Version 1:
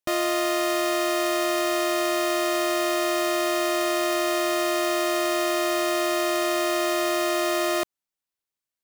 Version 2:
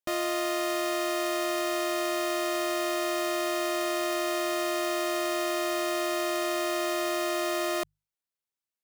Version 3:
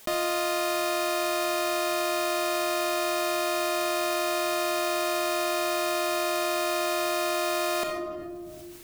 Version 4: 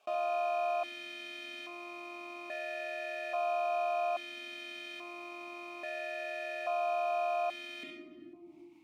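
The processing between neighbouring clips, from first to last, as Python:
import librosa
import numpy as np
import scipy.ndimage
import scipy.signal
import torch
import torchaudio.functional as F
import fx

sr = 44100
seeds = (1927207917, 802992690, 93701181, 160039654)

y1 = fx.hum_notches(x, sr, base_hz=50, count=3)
y1 = y1 * 10.0 ** (-5.0 / 20.0)
y2 = fx.room_shoebox(y1, sr, seeds[0], volume_m3=2200.0, walls='furnished', distance_m=1.5)
y2 = fx.env_flatten(y2, sr, amount_pct=70)
y2 = y2 * 10.0 ** (1.5 / 20.0)
y3 = fx.room_early_taps(y2, sr, ms=(27, 70), db=(-9.0, -9.0))
y3 = fx.vowel_held(y3, sr, hz=1.2)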